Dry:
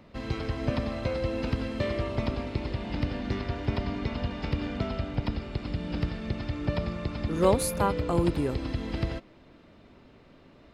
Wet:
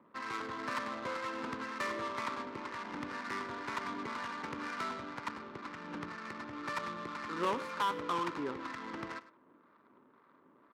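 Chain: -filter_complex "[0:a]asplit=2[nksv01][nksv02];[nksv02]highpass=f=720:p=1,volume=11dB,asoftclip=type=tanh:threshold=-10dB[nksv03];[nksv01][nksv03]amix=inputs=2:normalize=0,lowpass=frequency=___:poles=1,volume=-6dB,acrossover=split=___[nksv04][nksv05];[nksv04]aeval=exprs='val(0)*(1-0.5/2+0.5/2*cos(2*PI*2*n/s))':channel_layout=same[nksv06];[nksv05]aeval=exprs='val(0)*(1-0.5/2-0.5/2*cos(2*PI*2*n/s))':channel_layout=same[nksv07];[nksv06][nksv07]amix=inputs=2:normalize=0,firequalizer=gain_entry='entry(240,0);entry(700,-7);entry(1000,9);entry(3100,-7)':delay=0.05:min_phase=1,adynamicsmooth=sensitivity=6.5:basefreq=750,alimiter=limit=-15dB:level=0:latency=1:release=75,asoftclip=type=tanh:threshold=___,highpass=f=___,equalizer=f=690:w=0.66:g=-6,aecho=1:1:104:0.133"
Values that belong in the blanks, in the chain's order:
2800, 780, -21dB, 310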